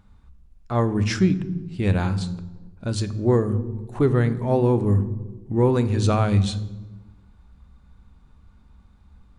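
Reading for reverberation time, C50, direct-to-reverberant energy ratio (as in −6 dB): 1.2 s, 15.0 dB, 11.5 dB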